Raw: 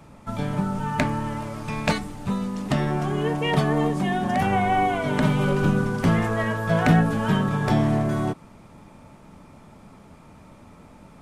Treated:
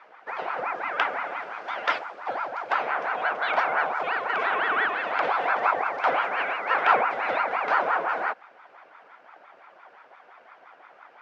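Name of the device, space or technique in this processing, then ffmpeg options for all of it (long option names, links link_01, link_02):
voice changer toy: -af "aeval=exprs='val(0)*sin(2*PI*750*n/s+750*0.6/5.8*sin(2*PI*5.8*n/s))':channel_layout=same,highpass=570,equalizer=frequency=730:width_type=q:width=4:gain=5,equalizer=frequency=1500:width_type=q:width=4:gain=6,equalizer=frequency=2300:width_type=q:width=4:gain=5,equalizer=frequency=4000:width_type=q:width=4:gain=-4,lowpass=frequency=4600:width=0.5412,lowpass=frequency=4600:width=1.3066,volume=-1.5dB"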